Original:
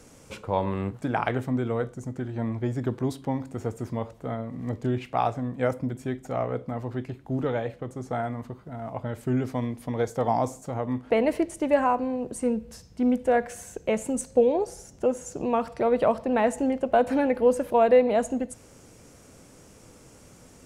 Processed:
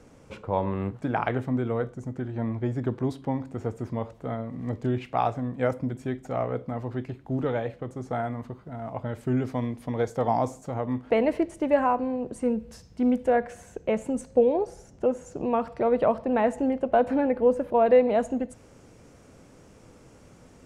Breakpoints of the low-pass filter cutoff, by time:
low-pass filter 6 dB per octave
1,900 Hz
from 0:00.81 3,000 Hz
from 0:04.04 5,100 Hz
from 0:11.26 2,900 Hz
from 0:12.59 5,600 Hz
from 0:13.30 2,200 Hz
from 0:17.11 1,300 Hz
from 0:17.86 2,900 Hz

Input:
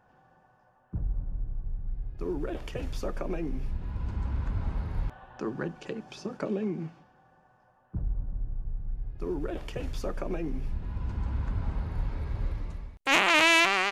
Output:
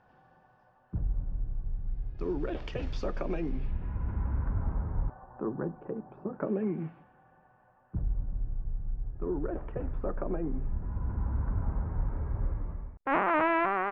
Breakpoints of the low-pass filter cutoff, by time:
low-pass filter 24 dB per octave
0:03.45 5,200 Hz
0:03.97 2,100 Hz
0:05.28 1,200 Hz
0:06.26 1,200 Hz
0:06.77 2,600 Hz
0:08.45 2,600 Hz
0:09.03 1,500 Hz

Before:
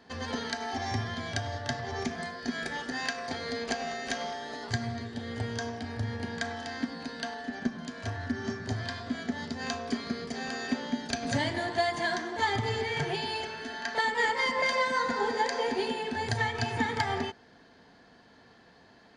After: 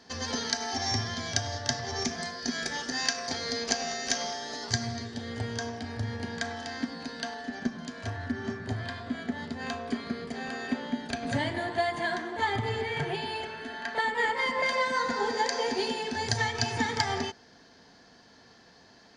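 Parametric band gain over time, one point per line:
parametric band 5,700 Hz 0.78 octaves
0:04.96 +13.5 dB
0:05.38 +3.5 dB
0:07.80 +3.5 dB
0:08.58 −8 dB
0:14.28 −8 dB
0:15.09 +4 dB
0:15.95 +11.5 dB

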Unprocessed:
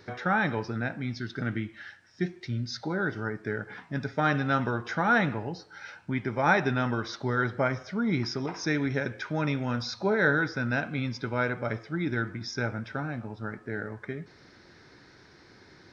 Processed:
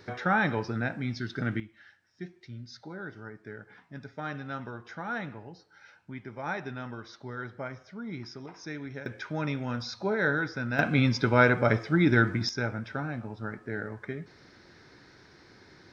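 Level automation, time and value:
+0.5 dB
from 0:01.60 −11 dB
from 0:09.06 −3 dB
from 0:10.79 +7.5 dB
from 0:12.49 −0.5 dB

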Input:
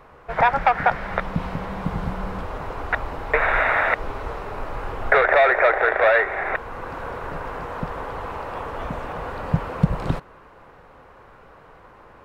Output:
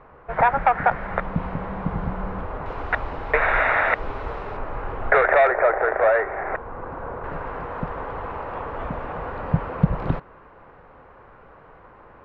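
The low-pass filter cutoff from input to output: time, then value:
2,000 Hz
from 0:02.66 3,800 Hz
from 0:04.57 2,200 Hz
from 0:05.47 1,300 Hz
from 0:07.24 2,300 Hz

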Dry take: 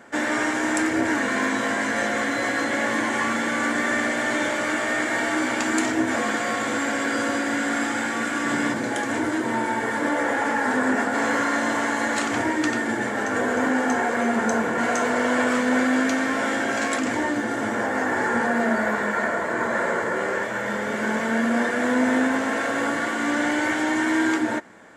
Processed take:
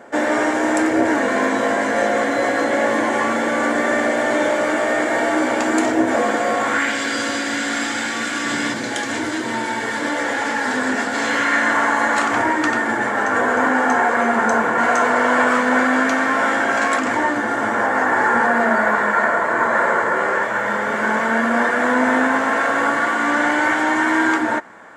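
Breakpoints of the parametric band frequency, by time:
parametric band +10 dB 1.8 octaves
0:06.55 570 Hz
0:06.99 4,300 Hz
0:11.21 4,300 Hz
0:11.86 1,100 Hz

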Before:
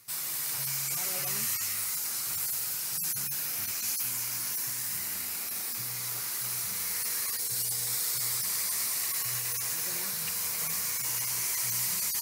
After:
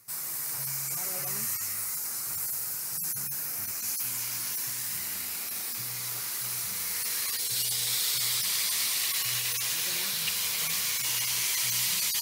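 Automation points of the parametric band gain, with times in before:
parametric band 3,300 Hz 0.94 octaves
0:03.74 −8.5 dB
0:04.21 +2.5 dB
0:06.86 +2.5 dB
0:07.62 +13.5 dB

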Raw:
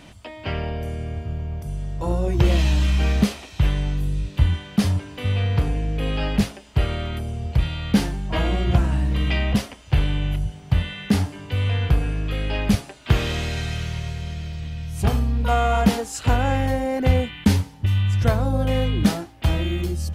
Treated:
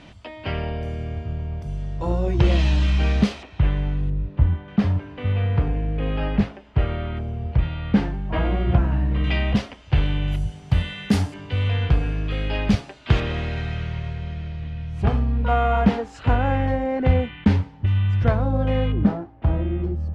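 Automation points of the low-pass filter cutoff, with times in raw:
4,800 Hz
from 0:03.43 2,200 Hz
from 0:04.10 1,200 Hz
from 0:04.68 2,100 Hz
from 0:09.24 4,100 Hz
from 0:10.28 9,900 Hz
from 0:11.34 4,700 Hz
from 0:13.20 2,400 Hz
from 0:18.92 1,100 Hz

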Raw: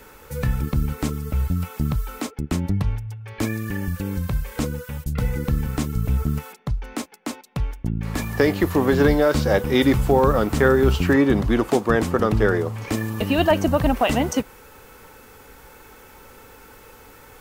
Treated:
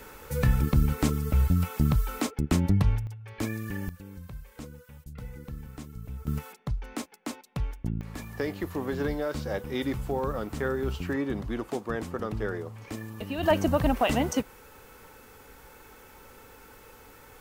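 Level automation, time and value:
−0.5 dB
from 0:03.07 −7 dB
from 0:03.89 −17.5 dB
from 0:06.27 −6 dB
from 0:08.01 −13 dB
from 0:13.43 −5 dB

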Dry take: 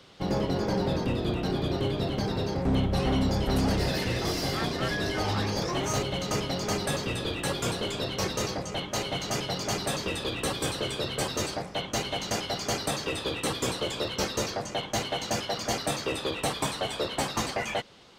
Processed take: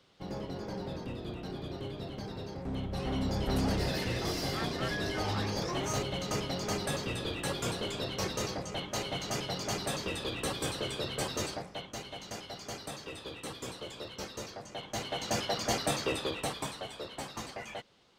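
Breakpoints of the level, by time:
0:02.74 −11.5 dB
0:03.47 −4.5 dB
0:11.48 −4.5 dB
0:11.96 −12 dB
0:14.63 −12 dB
0:15.41 −1.5 dB
0:16.09 −1.5 dB
0:16.94 −11.5 dB

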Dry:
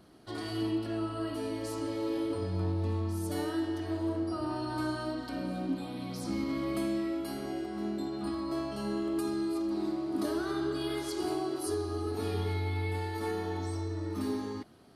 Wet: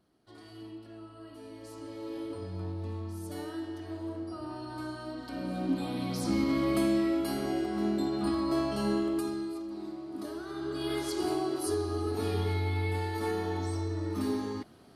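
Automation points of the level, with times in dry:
0:01.20 −13.5 dB
0:02.21 −5.5 dB
0:05.02 −5.5 dB
0:05.87 +5 dB
0:08.91 +5 dB
0:09.67 −7 dB
0:10.48 −7 dB
0:10.93 +2 dB

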